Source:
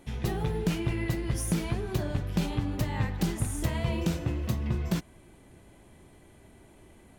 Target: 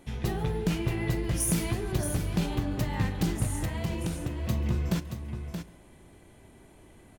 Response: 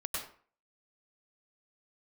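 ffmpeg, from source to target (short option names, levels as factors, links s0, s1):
-filter_complex "[0:a]asettb=1/sr,asplit=3[s0][s1][s2];[s0]atrim=end=1.404[s3];[s1]atrim=start=1.4:end=1.92,asetpts=PTS-STARTPTS,afade=t=in:d=0.004:c=qsin,afade=t=out:st=0.516:d=0.004:c=qsin,highshelf=f=6400:g=10.5[s4];[s2]atrim=start=1.916[s5];[s3][s4]acrossfade=d=0.004:c1=hsin:c2=qsin[s6];[s6][s5]acrossfade=d=0.004:c1=qsin:c2=hsin,asettb=1/sr,asplit=3[s7][s8][s9];[s7]atrim=end=3.564[s10];[s8]atrim=start=3.56:end=4.45,asetpts=PTS-STARTPTS,afade=t=in:d=0.004:c=qsin,afade=t=out:st=0.886:d=0.004:c=qsin,acompressor=threshold=0.0282:ratio=2.5[s11];[s9]atrim=start=4.446[s12];[s10][s11]acrossfade=d=0.004:c1=hsin:c2=qsin[s13];[s13][s12]acrossfade=d=0.004:c1=qsin:c2=hsin,aecho=1:1:626:0.398,asplit=2[s14][s15];[1:a]atrim=start_sample=2205,atrim=end_sample=4410,adelay=41[s16];[s15][s16]afir=irnorm=-1:irlink=0,volume=0.15[s17];[s14][s17]amix=inputs=2:normalize=0"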